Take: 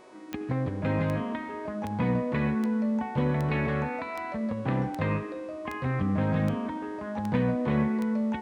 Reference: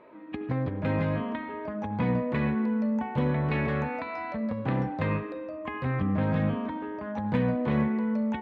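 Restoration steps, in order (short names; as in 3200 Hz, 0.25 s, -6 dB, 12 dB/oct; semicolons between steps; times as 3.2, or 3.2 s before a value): de-click; de-hum 371.3 Hz, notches 28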